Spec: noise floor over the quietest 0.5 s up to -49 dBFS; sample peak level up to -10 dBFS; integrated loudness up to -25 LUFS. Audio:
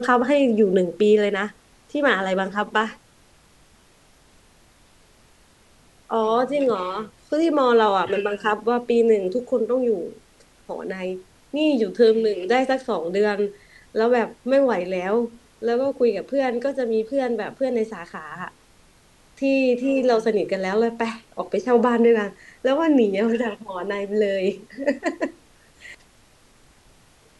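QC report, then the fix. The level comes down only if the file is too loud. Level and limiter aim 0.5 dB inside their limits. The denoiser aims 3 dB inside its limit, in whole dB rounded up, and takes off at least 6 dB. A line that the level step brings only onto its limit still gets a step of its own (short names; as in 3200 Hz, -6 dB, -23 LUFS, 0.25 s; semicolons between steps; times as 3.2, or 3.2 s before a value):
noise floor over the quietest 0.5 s -55 dBFS: OK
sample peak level -4.5 dBFS: fail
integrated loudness -22.0 LUFS: fail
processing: gain -3.5 dB; limiter -10.5 dBFS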